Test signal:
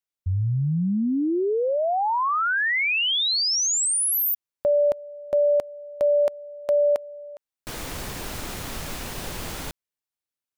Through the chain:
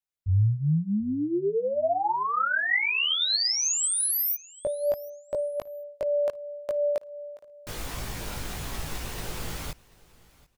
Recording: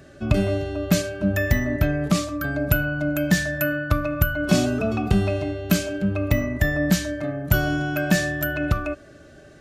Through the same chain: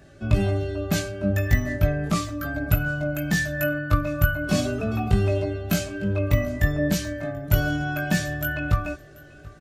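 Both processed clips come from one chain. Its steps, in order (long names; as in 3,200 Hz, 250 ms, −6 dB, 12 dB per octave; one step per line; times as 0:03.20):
multi-voice chorus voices 6, 0.34 Hz, delay 19 ms, depth 1.4 ms
repeating echo 735 ms, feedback 22%, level −23 dB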